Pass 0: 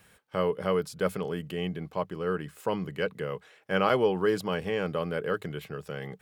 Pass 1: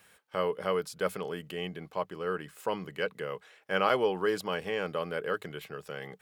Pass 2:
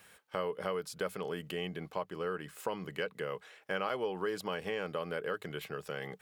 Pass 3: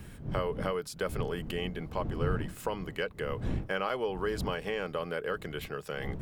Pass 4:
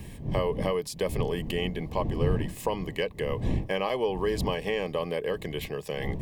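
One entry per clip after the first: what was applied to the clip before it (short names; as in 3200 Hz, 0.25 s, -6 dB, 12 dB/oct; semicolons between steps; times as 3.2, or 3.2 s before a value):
low shelf 260 Hz -11.5 dB
compressor 3:1, threshold -35 dBFS, peak gain reduction 11 dB; gain +1.5 dB
wind noise 170 Hz -41 dBFS; gain +2.5 dB
Butterworth band-stop 1400 Hz, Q 2.5; gain +5 dB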